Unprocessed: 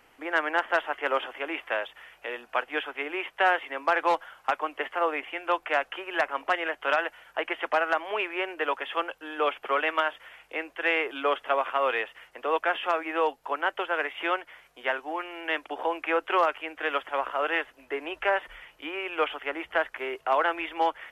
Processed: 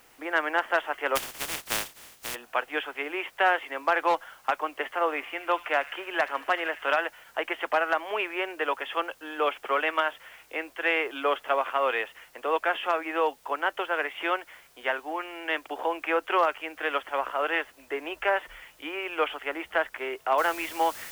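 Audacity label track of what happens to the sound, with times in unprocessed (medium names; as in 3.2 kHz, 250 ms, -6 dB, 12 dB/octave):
1.150000	2.340000	spectral contrast reduction exponent 0.15
4.850000	6.990000	feedback echo behind a high-pass 75 ms, feedback 67%, high-pass 2 kHz, level -12.5 dB
20.380000	20.380000	noise floor step -61 dB -43 dB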